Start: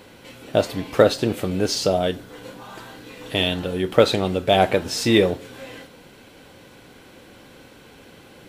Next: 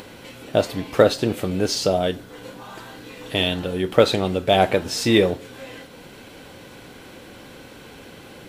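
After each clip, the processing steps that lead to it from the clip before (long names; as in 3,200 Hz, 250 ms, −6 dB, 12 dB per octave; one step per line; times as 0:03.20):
upward compression, threshold −35 dBFS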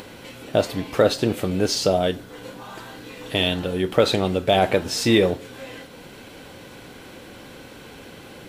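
boost into a limiter +5 dB
level −4.5 dB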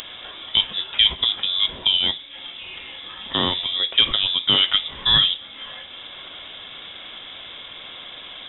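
voice inversion scrambler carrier 3,700 Hz
upward compression, threshold −31 dBFS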